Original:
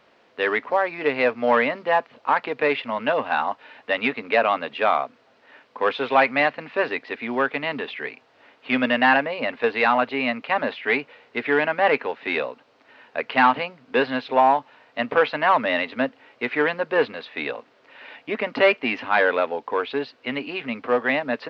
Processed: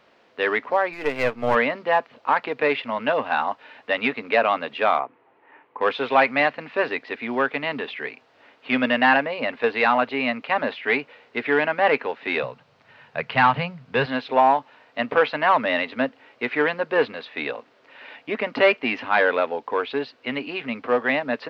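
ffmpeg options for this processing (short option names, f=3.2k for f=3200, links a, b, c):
-filter_complex "[0:a]asplit=3[a][b][c];[a]afade=t=out:st=0.92:d=0.02[d];[b]aeval=exprs='if(lt(val(0),0),0.447*val(0),val(0))':c=same,afade=t=in:st=0.92:d=0.02,afade=t=out:st=1.54:d=0.02[e];[c]afade=t=in:st=1.54:d=0.02[f];[d][e][f]amix=inputs=3:normalize=0,asettb=1/sr,asplit=3[g][h][i];[g]atrim=end=4.994[j];[h]atrim=start=4.99:end=5.81,asetpts=PTS-STARTPTS,afade=t=in:d=0.004:c=qsin,afade=t=out:st=0.816:d=0.004:c=qsin,highpass=120,equalizer=f=230:t=q:w=4:g=-10,equalizer=f=340:t=q:w=4:g=8,equalizer=f=600:t=q:w=4:g=-7,equalizer=f=890:t=q:w=4:g=6,equalizer=f=1.5k:t=q:w=4:g=-6,lowpass=f=2.3k:w=0.5412,lowpass=f=2.3k:w=1.3066[k];[i]atrim=start=5.806[l];[j][k]acrossfade=d=0.004:c1=hsin:c2=qsin[m];[m][l]acrossfade=d=0.004:c1=qsin:c2=hsin,asettb=1/sr,asplit=3[n][o][p];[n]atrim=end=12.434[q];[o]atrim=start=12.43:end=14.06,asetpts=PTS-STARTPTS,afade=t=in:d=0.004:c=qsin,afade=t=out:st=1.626:d=0.004:c=qsin,lowshelf=f=210:t=q:w=3:g=9[r];[p]atrim=start=14.056[s];[q][r]acrossfade=d=0.004:c1=hsin:c2=qsin[t];[t][s]acrossfade=d=0.004:c1=qsin:c2=hsin"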